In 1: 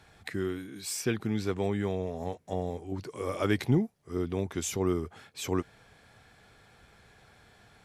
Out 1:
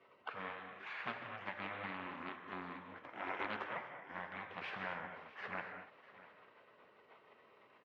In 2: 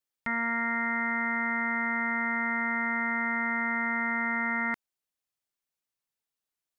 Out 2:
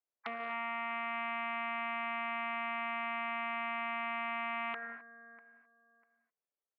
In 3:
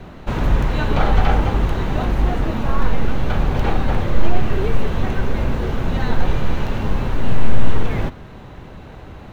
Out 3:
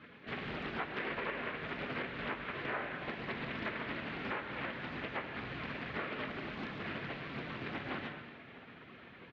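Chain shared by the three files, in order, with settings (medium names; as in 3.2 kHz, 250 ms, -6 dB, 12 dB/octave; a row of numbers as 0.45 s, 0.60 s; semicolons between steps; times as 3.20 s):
high-pass 970 Hz 12 dB/octave; spectral gate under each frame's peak -15 dB weak; low-pass 2 kHz 24 dB/octave; compression 6:1, threshold -50 dBFS; on a send: feedback delay 646 ms, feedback 20%, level -18 dB; on the sum: gated-style reverb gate 280 ms flat, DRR 4.5 dB; loudspeaker Doppler distortion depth 0.32 ms; trim +13 dB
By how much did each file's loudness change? -13.0 LU, -8.5 LU, -18.0 LU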